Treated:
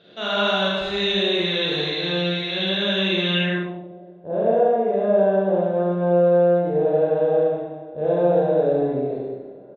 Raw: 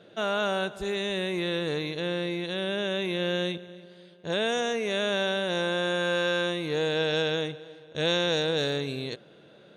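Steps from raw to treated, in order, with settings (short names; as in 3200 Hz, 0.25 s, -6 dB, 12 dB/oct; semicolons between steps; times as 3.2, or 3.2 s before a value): echo 73 ms -7 dB; Schroeder reverb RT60 1.3 s, combs from 31 ms, DRR -7 dB; low-pass sweep 4000 Hz -> 660 Hz, 3.29–3.87; gain -3.5 dB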